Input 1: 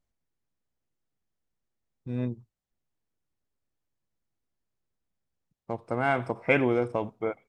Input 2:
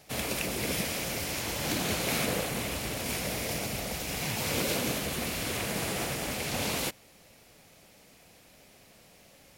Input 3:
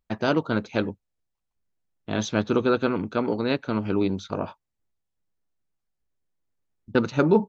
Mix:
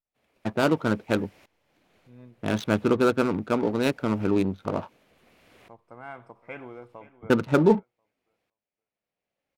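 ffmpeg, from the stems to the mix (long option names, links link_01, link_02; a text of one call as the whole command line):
ffmpeg -i stem1.wav -i stem2.wav -i stem3.wav -filter_complex "[0:a]equalizer=frequency=1100:width=1.2:gain=6.5,volume=-18.5dB,asplit=3[link_01][link_02][link_03];[link_02]volume=-16.5dB[link_04];[1:a]bass=frequency=250:gain=-6,treble=frequency=4000:gain=-13,aeval=exprs='val(0)*pow(10,-20*if(lt(mod(-0.71*n/s,1),2*abs(-0.71)/1000),1-mod(-0.71*n/s,1)/(2*abs(-0.71)/1000),(mod(-0.71*n/s,1)-2*abs(-0.71)/1000)/(1-2*abs(-0.71)/1000))/20)':channel_layout=same,adelay=50,volume=-18.5dB[link_05];[2:a]adynamicsmooth=sensitivity=6.5:basefreq=600,adelay=350,volume=0.5dB[link_06];[link_03]apad=whole_len=424404[link_07];[link_05][link_07]sidechaincompress=threshold=-56dB:ratio=8:attack=23:release=538[link_08];[link_04]aecho=0:1:519|1038|1557:1|0.17|0.0289[link_09];[link_01][link_08][link_06][link_09]amix=inputs=4:normalize=0" out.wav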